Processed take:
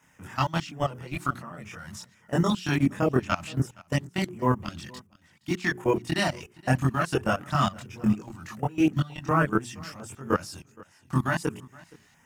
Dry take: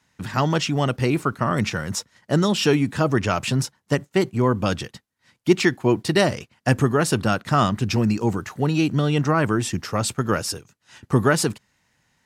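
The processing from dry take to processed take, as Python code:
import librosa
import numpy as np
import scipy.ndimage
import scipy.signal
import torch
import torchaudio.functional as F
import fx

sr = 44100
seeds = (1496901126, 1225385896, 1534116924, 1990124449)

p1 = fx.law_mismatch(x, sr, coded='mu')
p2 = fx.highpass(p1, sr, hz=100.0, slope=6)
p3 = fx.hum_notches(p2, sr, base_hz=60, count=7)
p4 = fx.level_steps(p3, sr, step_db=20)
p5 = fx.chorus_voices(p4, sr, voices=2, hz=0.73, base_ms=23, depth_ms=1.2, mix_pct=55)
p6 = fx.filter_lfo_notch(p5, sr, shape='square', hz=1.4, low_hz=450.0, high_hz=4200.0, q=1.1)
p7 = p6 + fx.echo_single(p6, sr, ms=469, db=-23.0, dry=0)
y = p7 * librosa.db_to_amplitude(2.5)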